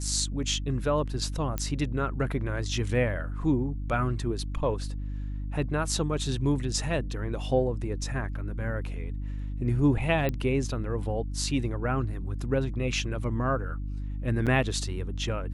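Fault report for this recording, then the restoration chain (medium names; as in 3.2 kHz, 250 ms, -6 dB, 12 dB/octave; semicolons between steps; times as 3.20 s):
hum 50 Hz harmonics 6 -33 dBFS
1.58 s: pop -15 dBFS
10.29 s: pop -16 dBFS
14.46–14.47 s: dropout 7.4 ms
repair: de-click; de-hum 50 Hz, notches 6; interpolate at 14.46 s, 7.4 ms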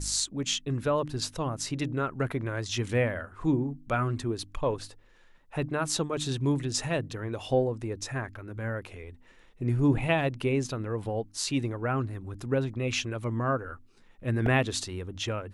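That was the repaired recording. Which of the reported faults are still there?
nothing left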